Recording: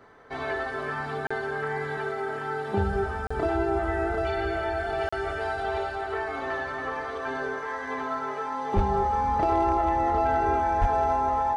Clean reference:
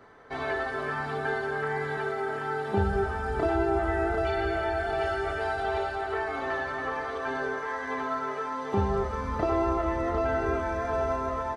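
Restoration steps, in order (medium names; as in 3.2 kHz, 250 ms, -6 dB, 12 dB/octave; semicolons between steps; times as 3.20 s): clip repair -15.5 dBFS; band-stop 830 Hz, Q 30; de-plosive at 8.75/10.80 s; interpolate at 1.27/3.27/5.09 s, 35 ms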